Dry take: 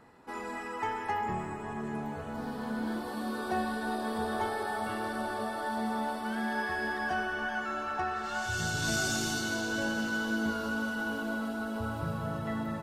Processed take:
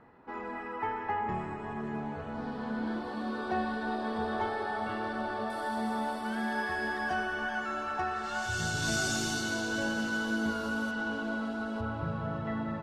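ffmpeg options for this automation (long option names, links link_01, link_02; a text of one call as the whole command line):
ffmpeg -i in.wav -af "asetnsamples=nb_out_samples=441:pad=0,asendcmd='1.29 lowpass f 4100;5.5 lowpass f 11000;10.91 lowpass f 5500;11.81 lowpass f 3200',lowpass=2300" out.wav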